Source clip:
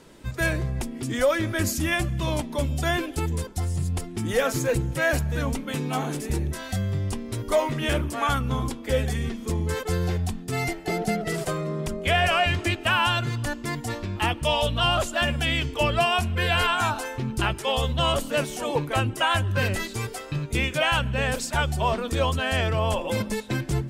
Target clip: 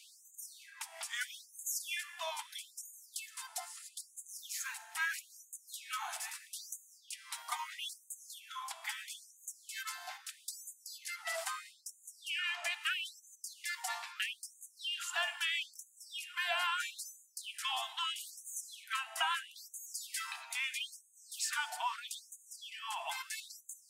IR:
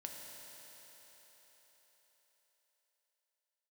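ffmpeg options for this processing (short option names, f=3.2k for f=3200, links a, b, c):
-filter_complex "[0:a]acompressor=threshold=-32dB:ratio=6,asplit=2[a][b];[1:a]atrim=start_sample=2205,afade=t=out:st=0.29:d=0.01,atrim=end_sample=13230[c];[b][c]afir=irnorm=-1:irlink=0,volume=-2dB[d];[a][d]amix=inputs=2:normalize=0,afftfilt=real='re*gte(b*sr/1024,630*pow(6300/630,0.5+0.5*sin(2*PI*0.77*pts/sr)))':imag='im*gte(b*sr/1024,630*pow(6300/630,0.5+0.5*sin(2*PI*0.77*pts/sr)))':win_size=1024:overlap=0.75,volume=-1dB"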